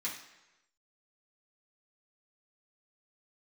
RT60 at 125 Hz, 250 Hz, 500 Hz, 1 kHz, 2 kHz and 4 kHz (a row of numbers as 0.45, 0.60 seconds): 0.95, 0.85, 1.0, 1.0, 1.0, 0.90 seconds